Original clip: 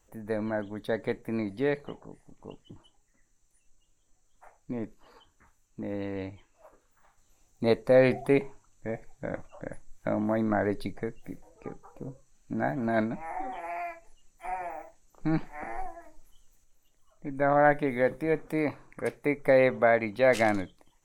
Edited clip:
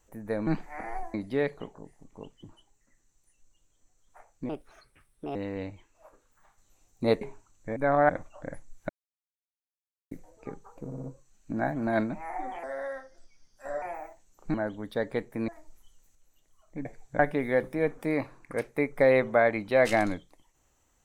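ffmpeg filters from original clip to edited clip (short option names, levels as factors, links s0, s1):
-filter_complex "[0:a]asplit=19[s0][s1][s2][s3][s4][s5][s6][s7][s8][s9][s10][s11][s12][s13][s14][s15][s16][s17][s18];[s0]atrim=end=0.472[s19];[s1]atrim=start=15.298:end=15.972[s20];[s2]atrim=start=1.408:end=4.764[s21];[s3]atrim=start=4.76:end=5.95,asetpts=PTS-STARTPTS,asetrate=60858,aresample=44100,atrim=end_sample=38028,asetpts=PTS-STARTPTS[s22];[s4]atrim=start=5.946:end=7.812[s23];[s5]atrim=start=8.388:end=8.942[s24];[s6]atrim=start=17.338:end=17.672[s25];[s7]atrim=start=9.278:end=10.08,asetpts=PTS-STARTPTS,afade=t=out:st=0.798:d=0.004:c=hsin[s26];[s8]atrim=start=10.08:end=11.3,asetpts=PTS-STARTPTS,volume=0[s27];[s9]atrim=start=11.3:end=12.102,asetpts=PTS-STARTPTS,afade=t=in:d=0.004:c=hsin[s28];[s10]atrim=start=12.038:end=12.102[s29];[s11]atrim=start=12.038:end=12.102[s30];[s12]atrim=start=12.038:end=13.644[s31];[s13]atrim=start=13.64:end=14.58,asetpts=PTS-STARTPTS,asetrate=34839,aresample=44100,atrim=end_sample=52473,asetpts=PTS-STARTPTS[s32];[s14]atrim=start=14.576:end=15.302[s33];[s15]atrim=start=0.468:end=1.412[s34];[s16]atrim=start=15.968:end=17.342[s35];[s17]atrim=start=8.938:end=9.282[s36];[s18]atrim=start=17.668[s37];[s19][s20]acrossfade=d=0.004:c1=hsin:c2=hsin[s38];[s38][s21]acrossfade=d=0.004:c1=hsin:c2=hsin[s39];[s39][s22]acrossfade=d=0.004:c1=hsin:c2=hsin[s40];[s40][s23]acrossfade=d=0.004:c1=hsin:c2=hsin[s41];[s41][s24]acrossfade=d=0.004:c1=hsin:c2=hsin[s42];[s42][s25]acrossfade=d=0.004:c1=hsin:c2=hsin[s43];[s26][s27][s28]concat=n=3:v=0:a=1[s44];[s43][s44]acrossfade=d=0.004:c1=hsin:c2=hsin[s45];[s45][s29]acrossfade=d=0.004:c1=hsin:c2=hsin[s46];[s46][s30]acrossfade=d=0.004:c1=hsin:c2=hsin[s47];[s47][s31]acrossfade=d=0.004:c1=hsin:c2=hsin[s48];[s48][s32]acrossfade=d=0.004:c1=hsin:c2=hsin[s49];[s49][s33]acrossfade=d=0.004:c1=hsin:c2=hsin[s50];[s50][s34]acrossfade=d=0.004:c1=hsin:c2=hsin[s51];[s51][s35]acrossfade=d=0.004:c1=hsin:c2=hsin[s52];[s52][s36]acrossfade=d=0.004:c1=hsin:c2=hsin[s53];[s53][s37]acrossfade=d=0.004:c1=hsin:c2=hsin"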